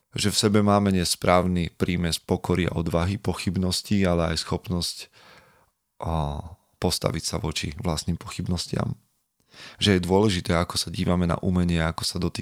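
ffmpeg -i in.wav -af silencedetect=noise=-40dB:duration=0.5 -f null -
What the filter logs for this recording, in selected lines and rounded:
silence_start: 5.39
silence_end: 6.01 | silence_duration: 0.62
silence_start: 8.93
silence_end: 9.54 | silence_duration: 0.61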